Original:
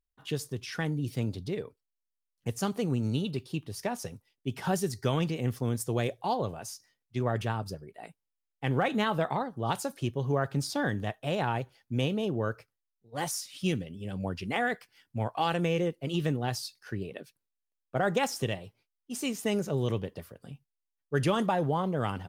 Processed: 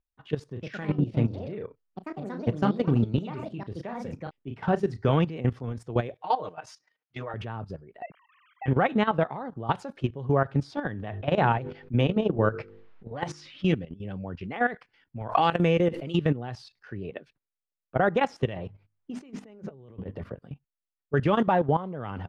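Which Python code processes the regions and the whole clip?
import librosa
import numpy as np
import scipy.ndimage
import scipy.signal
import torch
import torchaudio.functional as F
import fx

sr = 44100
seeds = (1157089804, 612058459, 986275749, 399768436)

y = fx.chain(x, sr, fx.high_shelf(hz=3400.0, db=-4.0),
    fx.echo_pitch(ms=116, semitones=4, count=2, db_per_echo=-6.0),
    fx.doubler(ms=34.0, db=-8.5), at=(0.49, 5.11))
y = fx.chain(y, sr, fx.highpass(hz=730.0, slope=6),
    fx.comb(ms=6.5, depth=0.99), at=(6.14, 7.34))
y = fx.chain(y, sr, fx.sine_speech(),
    fx.pre_swell(db_per_s=54.0), at=(8.02, 8.66))
y = fx.chain(y, sr, fx.env_lowpass(base_hz=2500.0, full_db=-24.5),
    fx.hum_notches(base_hz=50, count=10),
    fx.env_flatten(amount_pct=50), at=(11.02, 13.75))
y = fx.chain(y, sr, fx.high_shelf(hz=5800.0, db=12.0),
    fx.pre_swell(db_per_s=33.0), at=(15.29, 16.18))
y = fx.chain(y, sr, fx.high_shelf(hz=2300.0, db=-7.5),
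    fx.hum_notches(base_hz=50, count=6),
    fx.over_compress(threshold_db=-42.0, ratio=-1.0), at=(18.56, 20.39))
y = scipy.signal.sosfilt(scipy.signal.butter(2, 2400.0, 'lowpass', fs=sr, output='sos'), y)
y = fx.level_steps(y, sr, step_db=14)
y = y * 10.0 ** (7.0 / 20.0)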